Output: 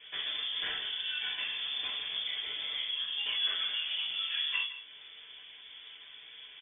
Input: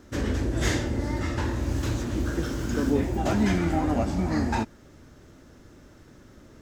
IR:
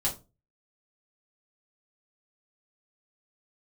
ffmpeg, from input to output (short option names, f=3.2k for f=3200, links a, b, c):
-filter_complex "[0:a]highpass=f=440:p=1,acompressor=threshold=-44dB:ratio=2.5,asplit=2[a][b];[b]adelay=163.3,volume=-13dB,highshelf=f=4k:g=-3.67[c];[a][c]amix=inputs=2:normalize=0[d];[1:a]atrim=start_sample=2205,asetrate=48510,aresample=44100[e];[d][e]afir=irnorm=-1:irlink=0,lowpass=f=3.1k:t=q:w=0.5098,lowpass=f=3.1k:t=q:w=0.6013,lowpass=f=3.1k:t=q:w=0.9,lowpass=f=3.1k:t=q:w=2.563,afreqshift=-3600"